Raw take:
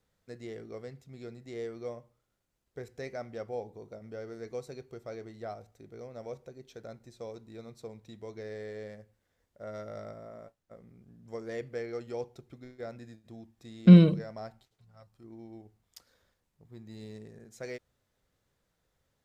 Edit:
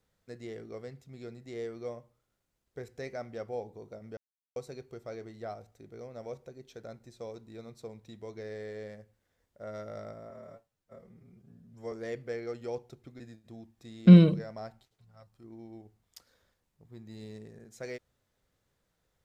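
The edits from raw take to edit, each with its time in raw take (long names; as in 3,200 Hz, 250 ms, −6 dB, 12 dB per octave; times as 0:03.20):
0:04.17–0:04.56: silence
0:10.30–0:11.38: time-stretch 1.5×
0:12.66–0:13.00: remove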